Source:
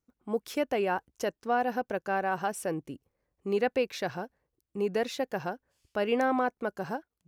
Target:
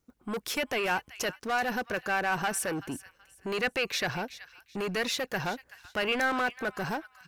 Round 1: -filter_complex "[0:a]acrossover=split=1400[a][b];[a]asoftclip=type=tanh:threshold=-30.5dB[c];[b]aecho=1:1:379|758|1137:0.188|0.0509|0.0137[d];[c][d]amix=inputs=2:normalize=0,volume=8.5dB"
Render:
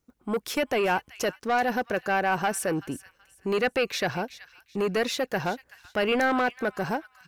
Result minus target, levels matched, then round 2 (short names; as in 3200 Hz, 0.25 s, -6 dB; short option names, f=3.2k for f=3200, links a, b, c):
soft clip: distortion -5 dB
-filter_complex "[0:a]acrossover=split=1400[a][b];[a]asoftclip=type=tanh:threshold=-39dB[c];[b]aecho=1:1:379|758|1137:0.188|0.0509|0.0137[d];[c][d]amix=inputs=2:normalize=0,volume=8.5dB"